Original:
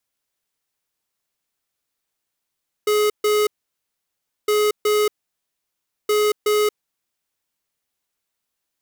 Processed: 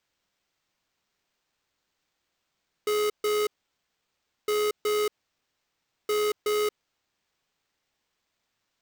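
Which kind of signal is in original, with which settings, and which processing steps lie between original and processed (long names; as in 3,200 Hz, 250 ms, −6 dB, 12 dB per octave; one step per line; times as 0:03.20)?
beeps in groups square 421 Hz, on 0.23 s, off 0.14 s, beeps 2, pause 1.01 s, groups 3, −17.5 dBFS
brickwall limiter −25 dBFS
bad sample-rate conversion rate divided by 4×, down none, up hold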